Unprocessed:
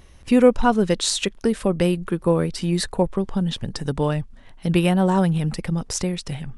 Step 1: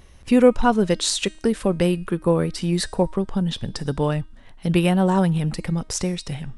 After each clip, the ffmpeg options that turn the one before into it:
-af "bandreject=f=313.4:t=h:w=4,bandreject=f=626.8:t=h:w=4,bandreject=f=940.2:t=h:w=4,bandreject=f=1253.6:t=h:w=4,bandreject=f=1567:t=h:w=4,bandreject=f=1880.4:t=h:w=4,bandreject=f=2193.8:t=h:w=4,bandreject=f=2507.2:t=h:w=4,bandreject=f=2820.6:t=h:w=4,bandreject=f=3134:t=h:w=4,bandreject=f=3447.4:t=h:w=4,bandreject=f=3760.8:t=h:w=4,bandreject=f=4074.2:t=h:w=4,bandreject=f=4387.6:t=h:w=4,bandreject=f=4701:t=h:w=4,bandreject=f=5014.4:t=h:w=4,bandreject=f=5327.8:t=h:w=4,bandreject=f=5641.2:t=h:w=4,bandreject=f=5954.6:t=h:w=4,bandreject=f=6268:t=h:w=4,bandreject=f=6581.4:t=h:w=4,bandreject=f=6894.8:t=h:w=4,bandreject=f=7208.2:t=h:w=4,bandreject=f=7521.6:t=h:w=4,bandreject=f=7835:t=h:w=4,bandreject=f=8148.4:t=h:w=4,bandreject=f=8461.8:t=h:w=4,bandreject=f=8775.2:t=h:w=4,bandreject=f=9088.6:t=h:w=4,bandreject=f=9402:t=h:w=4"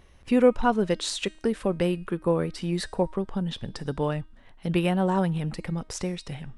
-af "bass=f=250:g=-3,treble=f=4000:g=-6,volume=0.631"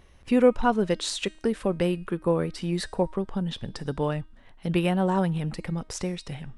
-af anull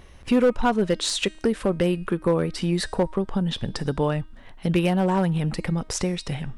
-filter_complex "[0:a]asplit=2[s0][s1];[s1]acompressor=threshold=0.0316:ratio=12,volume=1.33[s2];[s0][s2]amix=inputs=2:normalize=0,volume=4.47,asoftclip=hard,volume=0.224"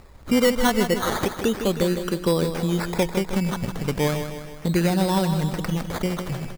-filter_complex "[0:a]acrusher=samples=14:mix=1:aa=0.000001:lfo=1:lforange=8.4:lforate=0.35,asplit=2[s0][s1];[s1]aecho=0:1:157|314|471|628|785|942:0.376|0.199|0.106|0.056|0.0297|0.0157[s2];[s0][s2]amix=inputs=2:normalize=0"

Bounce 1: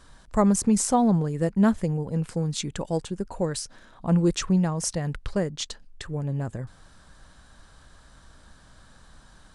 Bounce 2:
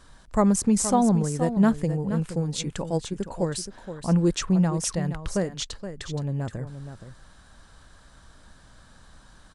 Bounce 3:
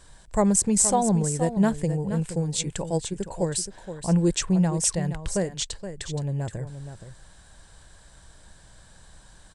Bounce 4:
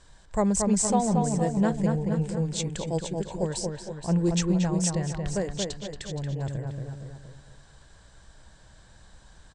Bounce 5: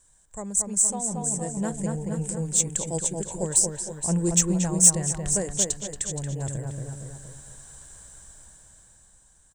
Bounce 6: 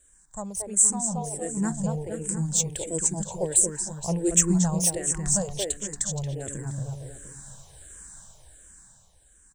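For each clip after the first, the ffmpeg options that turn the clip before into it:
-af "aecho=1:1:472:0.299"
-af "equalizer=f=250:t=o:w=0.33:g=-10,equalizer=f=1250:t=o:w=0.33:g=-9,equalizer=f=8000:t=o:w=0.33:g=9,volume=1.12"
-filter_complex "[0:a]lowpass=f=7700:w=0.5412,lowpass=f=7700:w=1.3066,asplit=2[s0][s1];[s1]adelay=229,lowpass=f=2300:p=1,volume=0.668,asplit=2[s2][s3];[s3]adelay=229,lowpass=f=2300:p=1,volume=0.39,asplit=2[s4][s5];[s5]adelay=229,lowpass=f=2300:p=1,volume=0.39,asplit=2[s6][s7];[s7]adelay=229,lowpass=f=2300:p=1,volume=0.39,asplit=2[s8][s9];[s9]adelay=229,lowpass=f=2300:p=1,volume=0.39[s10];[s0][s2][s4][s6][s8][s10]amix=inputs=6:normalize=0,volume=0.708"
-af "dynaudnorm=f=320:g=9:m=5.31,aexciter=amount=9.9:drive=6.5:freq=6700,volume=0.237"
-filter_complex "[0:a]asplit=2[s0][s1];[s1]afreqshift=-1.4[s2];[s0][s2]amix=inputs=2:normalize=1,volume=1.41"

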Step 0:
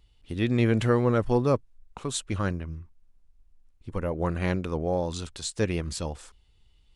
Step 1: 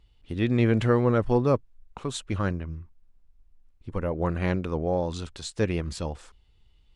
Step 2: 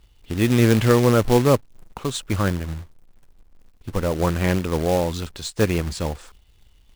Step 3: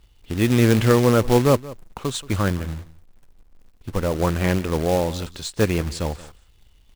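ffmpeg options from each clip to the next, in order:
-af "lowpass=f=3800:p=1,volume=1.12"
-af "acrusher=bits=3:mode=log:mix=0:aa=0.000001,volume=1.88"
-af "aecho=1:1:178:0.112"

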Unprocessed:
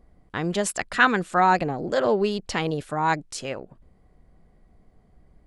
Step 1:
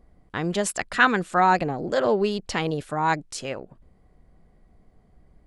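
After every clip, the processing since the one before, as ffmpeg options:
-af anull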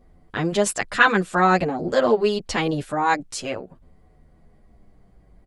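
-filter_complex "[0:a]asplit=2[s0][s1];[s1]adelay=8.9,afreqshift=-0.52[s2];[s0][s2]amix=inputs=2:normalize=1,volume=2"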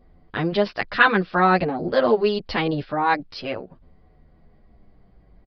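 -af "aresample=11025,aresample=44100"

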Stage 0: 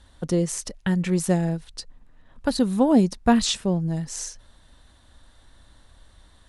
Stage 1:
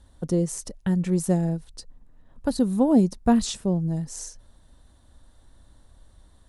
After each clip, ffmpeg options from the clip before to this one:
-af "equalizer=f=2500:t=o:w=2.6:g=-10"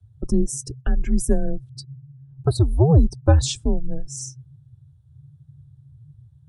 -af "acontrast=23,afreqshift=-150,afftdn=nr=25:nf=-37"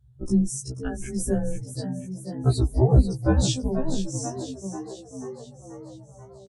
-filter_complex "[0:a]asplit=2[s0][s1];[s1]asplit=7[s2][s3][s4][s5][s6][s7][s8];[s2]adelay=487,afreqshift=76,volume=0.299[s9];[s3]adelay=974,afreqshift=152,volume=0.17[s10];[s4]adelay=1461,afreqshift=228,volume=0.0966[s11];[s5]adelay=1948,afreqshift=304,volume=0.0556[s12];[s6]adelay=2435,afreqshift=380,volume=0.0316[s13];[s7]adelay=2922,afreqshift=456,volume=0.018[s14];[s8]adelay=3409,afreqshift=532,volume=0.0102[s15];[s9][s10][s11][s12][s13][s14][s15]amix=inputs=7:normalize=0[s16];[s0][s16]amix=inputs=2:normalize=0,afftfilt=real='re*1.73*eq(mod(b,3),0)':imag='im*1.73*eq(mod(b,3),0)':win_size=2048:overlap=0.75"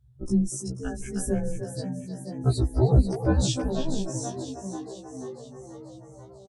-filter_complex "[0:a]asplit=2[s0][s1];[s1]adelay=310,highpass=300,lowpass=3400,asoftclip=type=hard:threshold=0.158,volume=0.501[s2];[s0][s2]amix=inputs=2:normalize=0,volume=0.794"

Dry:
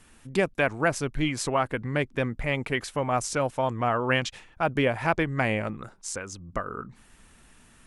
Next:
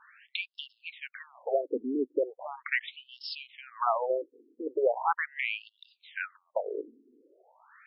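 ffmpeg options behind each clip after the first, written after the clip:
-af "acompressor=threshold=0.0282:ratio=2,afftfilt=real='re*between(b*sr/1024,330*pow(3900/330,0.5+0.5*sin(2*PI*0.39*pts/sr))/1.41,330*pow(3900/330,0.5+0.5*sin(2*PI*0.39*pts/sr))*1.41)':imag='im*between(b*sr/1024,330*pow(3900/330,0.5+0.5*sin(2*PI*0.39*pts/sr))/1.41,330*pow(3900/330,0.5+0.5*sin(2*PI*0.39*pts/sr))*1.41)':win_size=1024:overlap=0.75,volume=2.37"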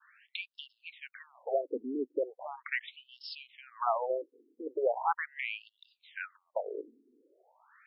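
-af "adynamicequalizer=threshold=0.00631:dfrequency=760:dqfactor=1.6:tfrequency=760:tqfactor=1.6:attack=5:release=100:ratio=0.375:range=2:mode=boostabove:tftype=bell,volume=0.562"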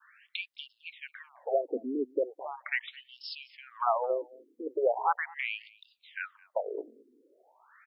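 -af "aecho=1:1:215:0.0668,volume=1.33"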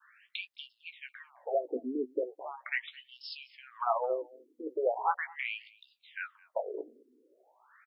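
-filter_complex "[0:a]asplit=2[s0][s1];[s1]adelay=16,volume=0.376[s2];[s0][s2]amix=inputs=2:normalize=0,volume=0.75"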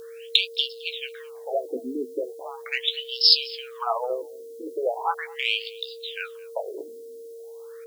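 -af "aeval=exprs='val(0)+0.00794*sin(2*PI*460*n/s)':c=same,aexciter=amount=10.3:drive=8.6:freq=3100,volume=1.5"

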